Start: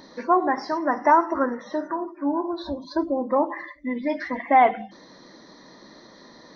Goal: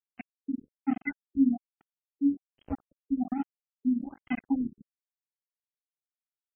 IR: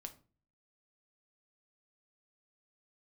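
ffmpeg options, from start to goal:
-filter_complex "[0:a]asettb=1/sr,asplit=3[link_01][link_02][link_03];[link_01]atrim=end=0.524[link_04];[link_02]atrim=start=0.52:end=2.66,asetpts=PTS-STARTPTS,afade=type=in:duration=0.004:curve=qsin,afade=type=out:start_time=2.136:duration=0.004:curve=qsin,equalizer=frequency=750:width_type=o:width=1.5:gain=12[link_05];[link_03]atrim=start=2.656[link_06];[link_04][link_05]acrossfade=duration=0.004:curve1=hsin:curve2=qsin[link_07];[link_07][link_06]acrossfade=duration=0.004:curve1=qsin:curve2=hsin,afftfilt=real='re*(1-between(b*sr/4096,280,2000))':imag='im*(1-between(b*sr/4096,280,2000))':win_size=4096:overlap=0.75,aeval=exprs='sgn(val(0))*max(abs(val(0))-0.0211,0)':channel_layout=same,afftfilt=real='re*lt(b*sr/1024,370*pow(3300/370,0.5+0.5*sin(2*PI*1.2*pts/sr)))':imag='im*lt(b*sr/1024,370*pow(3300/370,0.5+0.5*sin(2*PI*1.2*pts/sr)))':win_size=1024:overlap=0.75,volume=7dB"

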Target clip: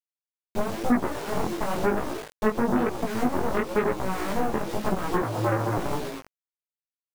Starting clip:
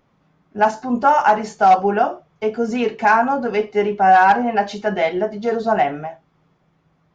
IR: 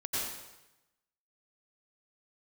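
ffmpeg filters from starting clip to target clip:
-filter_complex "[0:a]asplit=2[link_01][link_02];[link_02]asplit=6[link_03][link_04][link_05][link_06][link_07][link_08];[link_03]adelay=118,afreqshift=120,volume=-9dB[link_09];[link_04]adelay=236,afreqshift=240,volume=-14.5dB[link_10];[link_05]adelay=354,afreqshift=360,volume=-20dB[link_11];[link_06]adelay=472,afreqshift=480,volume=-25.5dB[link_12];[link_07]adelay=590,afreqshift=600,volume=-31.1dB[link_13];[link_08]adelay=708,afreqshift=720,volume=-36.6dB[link_14];[link_09][link_10][link_11][link_12][link_13][link_14]amix=inputs=6:normalize=0[link_15];[link_01][link_15]amix=inputs=2:normalize=0,adynamicequalizer=threshold=0.00355:dfrequency=130:dqfactor=4:tfrequency=130:tqfactor=4:attack=5:release=100:ratio=0.375:range=2.5:mode=cutabove:tftype=bell,asplit=2[link_16][link_17];[link_17]alimiter=limit=-12dB:level=0:latency=1,volume=2dB[link_18];[link_16][link_18]amix=inputs=2:normalize=0,firequalizer=gain_entry='entry(350,0);entry(870,-29);entry(1600,-22)':delay=0.05:min_phase=1,aeval=exprs='0.531*(cos(1*acos(clip(val(0)/0.531,-1,1)))-cos(1*PI/2))+0.0596*(cos(5*acos(clip(val(0)/0.531,-1,1)))-cos(5*PI/2))+0.075*(cos(6*acos(clip(val(0)/0.531,-1,1)))-cos(6*PI/2))+0.188*(cos(7*acos(clip(val(0)/0.531,-1,1)))-cos(7*PI/2))+0.106*(cos(8*acos(clip(val(0)/0.531,-1,1)))-cos(8*PI/2))':channel_layout=same,acrusher=bits=5:mix=0:aa=0.000001,acompressor=threshold=-20dB:ratio=4,flanger=delay=16:depth=7.2:speed=1,asettb=1/sr,asplit=3[link_19][link_20][link_21];[link_19]atrim=end=5.224[link_22];[link_20]atrim=start=5.22:end=5.78,asetpts=PTS-STARTPTS,afade=type=in:duration=0.004:curve=qsin,afade=type=out:start_time=0.556:duration=0.004:curve=qsin,afreqshift=110[link_23];[link_21]atrim=start=5.776[link_24];[link_22][link_23]acrossfade=duration=0.004:curve1=hsin:curve2=qsin[link_25];[link_25][link_24]acrossfade=duration=0.004:curve1=qsin:curve2=hsin,volume=2dB"

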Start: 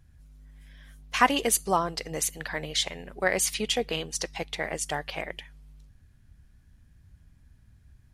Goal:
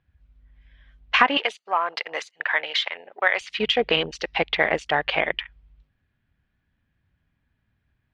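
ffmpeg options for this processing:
ffmpeg -i in.wav -filter_complex "[0:a]aemphasis=mode=production:type=bsi,acompressor=threshold=-24dB:ratio=16,afwtdn=0.00708,asettb=1/sr,asplit=3[link_01][link_02][link_03];[link_01]atrim=end=1.374[link_04];[link_02]atrim=start=1.37:end=3.41,asetpts=PTS-STARTPTS,afade=type=in:duration=0.004:curve=qsin,afade=type=out:start_time=2.036:duration=0.004:curve=qsin,highpass=830[link_05];[link_03]atrim=start=3.406[link_06];[link_04][link_05]acrossfade=duration=0.004:curve1=hsin:curve2=qsin[link_07];[link_07][link_06]acrossfade=duration=0.004:curve1=qsin:curve2=hsin,acontrast=66,lowpass=frequency=3100:width=0.5412,lowpass=frequency=3100:width=1.3066,volume=5.5dB" out.wav

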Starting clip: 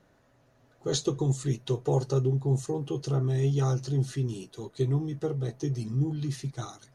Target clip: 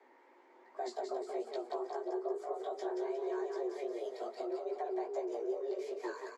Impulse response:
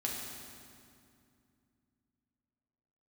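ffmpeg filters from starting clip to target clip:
-filter_complex "[0:a]acrossover=split=200[link_01][link_02];[link_02]acompressor=threshold=-28dB:ratio=6[link_03];[link_01][link_03]amix=inputs=2:normalize=0,equalizer=frequency=630:width_type=o:width=0.33:gain=6,equalizer=frequency=1600:width_type=o:width=0.33:gain=7,equalizer=frequency=8000:width_type=o:width=0.33:gain=-5,acompressor=threshold=-36dB:ratio=5,aemphasis=mode=reproduction:type=75fm,afreqshift=210,flanger=delay=15.5:depth=5.4:speed=2.3,asetrate=48069,aresample=44100,asplit=6[link_04][link_05][link_06][link_07][link_08][link_09];[link_05]adelay=179,afreqshift=31,volume=-5dB[link_10];[link_06]adelay=358,afreqshift=62,volume=-12.1dB[link_11];[link_07]adelay=537,afreqshift=93,volume=-19.3dB[link_12];[link_08]adelay=716,afreqshift=124,volume=-26.4dB[link_13];[link_09]adelay=895,afreqshift=155,volume=-33.5dB[link_14];[link_04][link_10][link_11][link_12][link_13][link_14]amix=inputs=6:normalize=0,asplit=2[link_15][link_16];[1:a]atrim=start_sample=2205[link_17];[link_16][link_17]afir=irnorm=-1:irlink=0,volume=-24.5dB[link_18];[link_15][link_18]amix=inputs=2:normalize=0,volume=1dB" -ar 32000 -c:a libmp3lame -b:a 80k

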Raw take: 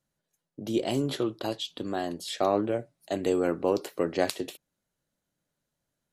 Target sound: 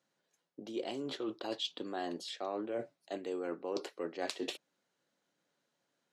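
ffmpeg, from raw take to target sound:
ffmpeg -i in.wav -af "bandreject=frequency=620:width=16,areverse,acompressor=threshold=-38dB:ratio=10,areverse,highpass=290,lowpass=5800,volume=5dB" out.wav

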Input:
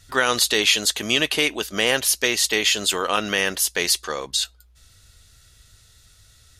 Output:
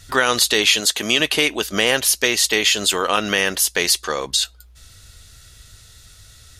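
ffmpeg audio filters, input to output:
ffmpeg -i in.wav -filter_complex "[0:a]asettb=1/sr,asplit=3[link_01][link_02][link_03];[link_01]atrim=end=0.804[link_04];[link_02]atrim=start=0.8:end=1.2,asetpts=PTS-STARTPTS,afade=type=in:duration=0.004:curve=qsin,afade=type=out:start_time=0.396:duration=0.004:curve=qsin,highpass=frequency=180:poles=1[link_05];[link_03]atrim=start=1.196[link_06];[link_04][link_05]acrossfade=duration=0.004:curve1=hsin:curve2=qsin[link_07];[link_07][link_06]acrossfade=duration=0.004:curve1=qsin:curve2=hsin,asplit=2[link_08][link_09];[link_09]acompressor=threshold=-28dB:ratio=6,volume=2.5dB[link_10];[link_08][link_10]amix=inputs=2:normalize=0" out.wav

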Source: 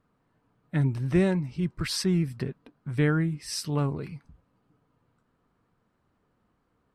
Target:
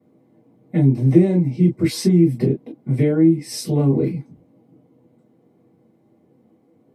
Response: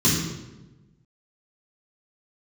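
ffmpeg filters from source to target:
-filter_complex "[0:a]acompressor=threshold=-27dB:ratio=5[link_01];[1:a]atrim=start_sample=2205,afade=type=out:start_time=0.15:duration=0.01,atrim=end_sample=7056,asetrate=88200,aresample=44100[link_02];[link_01][link_02]afir=irnorm=-1:irlink=0,volume=-5dB"

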